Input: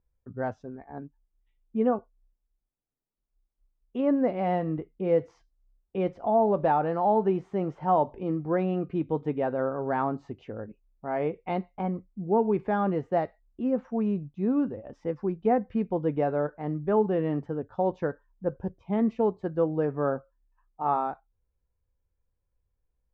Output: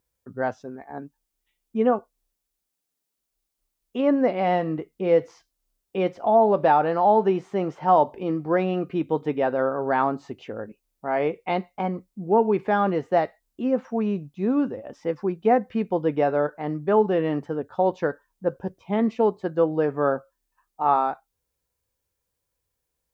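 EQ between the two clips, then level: HPF 250 Hz 6 dB/oct; high shelf 2900 Hz +10 dB; +5.5 dB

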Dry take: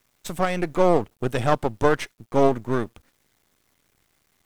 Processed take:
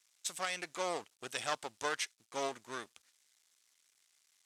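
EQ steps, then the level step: band-pass 7300 Hz, Q 0.76; air absorption 55 m; high shelf 8600 Hz +9.5 dB; +2.0 dB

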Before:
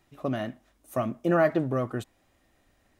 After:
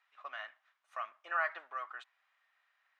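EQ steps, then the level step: HPF 1200 Hz 24 dB/oct; tape spacing loss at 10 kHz 28 dB; high shelf 5600 Hz -8 dB; +4.0 dB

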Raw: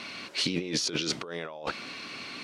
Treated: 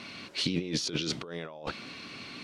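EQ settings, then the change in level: low shelf 250 Hz +10.5 dB; dynamic EQ 3500 Hz, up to +4 dB, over -44 dBFS, Q 1.9; -5.0 dB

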